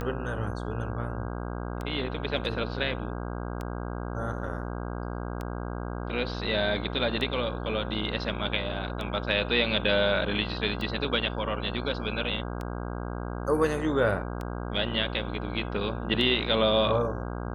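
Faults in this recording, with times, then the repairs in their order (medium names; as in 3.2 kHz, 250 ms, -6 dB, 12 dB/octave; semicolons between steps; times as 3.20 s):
buzz 60 Hz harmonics 27 -34 dBFS
tick 33 1/3 rpm -21 dBFS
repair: de-click; de-hum 60 Hz, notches 27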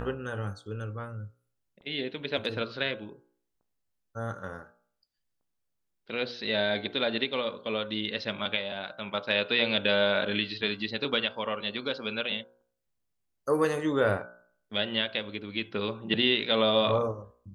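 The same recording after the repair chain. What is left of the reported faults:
nothing left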